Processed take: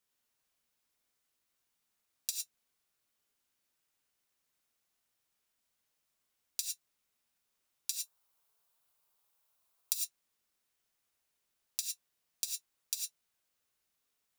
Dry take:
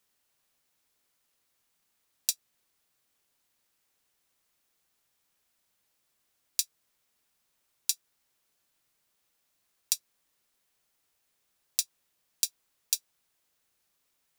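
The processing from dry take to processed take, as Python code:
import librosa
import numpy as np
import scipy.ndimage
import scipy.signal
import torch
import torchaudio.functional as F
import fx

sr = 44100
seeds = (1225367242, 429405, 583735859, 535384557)

y = fx.curve_eq(x, sr, hz=(130.0, 210.0, 1000.0, 1800.0, 3600.0, 6100.0, 15000.0), db=(0, -6, 8, -2, 1, 0, 7), at=(7.92, 9.93))
y = fx.rev_gated(y, sr, seeds[0], gate_ms=130, shape='rising', drr_db=1.0)
y = F.gain(torch.from_numpy(y), -8.5).numpy()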